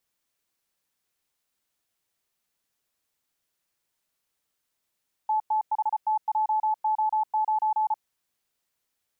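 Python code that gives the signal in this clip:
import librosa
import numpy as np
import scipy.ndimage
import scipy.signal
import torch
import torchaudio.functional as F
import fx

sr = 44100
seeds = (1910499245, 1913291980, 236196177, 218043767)

y = fx.morse(sr, text='TTHTJO9', wpm=34, hz=864.0, level_db=-21.0)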